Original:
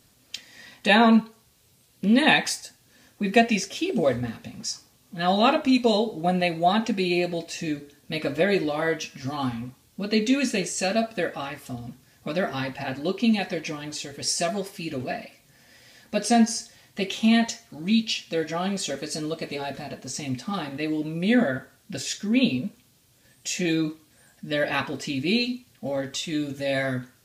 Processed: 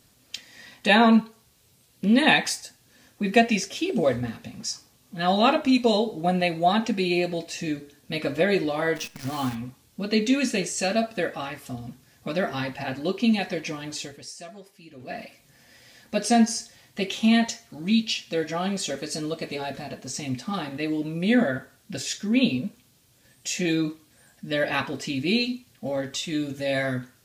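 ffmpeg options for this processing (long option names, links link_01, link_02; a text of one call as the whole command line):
ffmpeg -i in.wav -filter_complex "[0:a]asplit=3[link_01][link_02][link_03];[link_01]afade=type=out:start_time=8.95:duration=0.02[link_04];[link_02]acrusher=bits=7:dc=4:mix=0:aa=0.000001,afade=type=in:start_time=8.95:duration=0.02,afade=type=out:start_time=9.54:duration=0.02[link_05];[link_03]afade=type=in:start_time=9.54:duration=0.02[link_06];[link_04][link_05][link_06]amix=inputs=3:normalize=0,asplit=3[link_07][link_08][link_09];[link_07]atrim=end=14.34,asetpts=PTS-STARTPTS,afade=type=out:start_time=14.06:duration=0.28:curve=qua:silence=0.16788[link_10];[link_08]atrim=start=14.34:end=14.92,asetpts=PTS-STARTPTS,volume=-15.5dB[link_11];[link_09]atrim=start=14.92,asetpts=PTS-STARTPTS,afade=type=in:duration=0.28:curve=qua:silence=0.16788[link_12];[link_10][link_11][link_12]concat=n=3:v=0:a=1" out.wav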